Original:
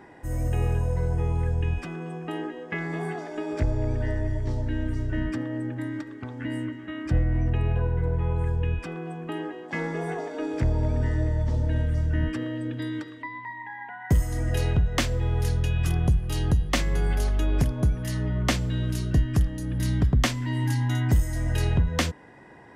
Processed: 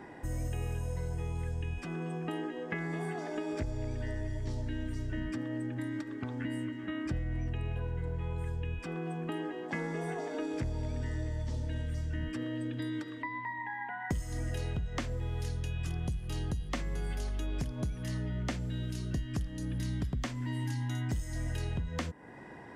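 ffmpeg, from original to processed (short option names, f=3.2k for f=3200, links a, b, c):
-filter_complex "[0:a]asettb=1/sr,asplit=3[a][b][c];[a]atrim=end=18.184[d];[b]atrim=start=18.18:end=18.99,asetpts=PTS-STARTPTS,afade=t=in:d=0.004:c=qsin,afade=t=out:st=0.806:d=0.004:c=qsin,bandreject=f=1.1k:w=10[e];[c]atrim=start=18.986[f];[d][e]acrossfade=d=0.004:c1=hsin:c2=qsin[g];[g][f]acrossfade=d=0.004:c1=qsin:c2=hsin,acrossover=split=8600[h][i];[i]acompressor=threshold=-58dB:ratio=4:attack=1:release=60[j];[h][j]amix=inputs=2:normalize=0,equalizer=f=220:w=1.5:g=2.5,acrossover=split=2400|6900[k][l][m];[k]acompressor=threshold=-34dB:ratio=4[n];[l]acompressor=threshold=-53dB:ratio=4[o];[m]acompressor=threshold=-55dB:ratio=4[p];[n][o][p]amix=inputs=3:normalize=0"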